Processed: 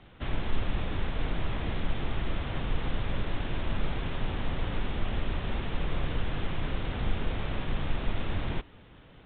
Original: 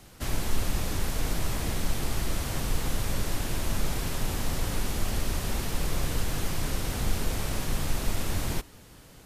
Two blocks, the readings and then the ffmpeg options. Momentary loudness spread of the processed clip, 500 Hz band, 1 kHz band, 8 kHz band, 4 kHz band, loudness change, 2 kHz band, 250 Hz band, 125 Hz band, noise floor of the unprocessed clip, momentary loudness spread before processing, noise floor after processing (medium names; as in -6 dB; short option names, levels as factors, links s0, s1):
1 LU, -1.5 dB, -1.5 dB, under -40 dB, -5.0 dB, -3.0 dB, -1.5 dB, -1.5 dB, -1.5 dB, -51 dBFS, 1 LU, -53 dBFS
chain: -af "volume=0.841" -ar 8000 -c:a pcm_alaw